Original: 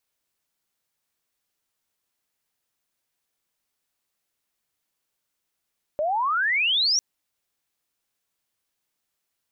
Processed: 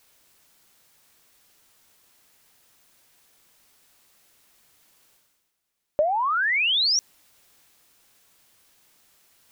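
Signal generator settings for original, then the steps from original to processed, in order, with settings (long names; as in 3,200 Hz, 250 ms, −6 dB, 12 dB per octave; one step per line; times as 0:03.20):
glide logarithmic 580 Hz → 5,900 Hz −21.5 dBFS → −18 dBFS 1.00 s
transient designer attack +7 dB, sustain +3 dB
reversed playback
upward compression, threshold −44 dBFS
reversed playback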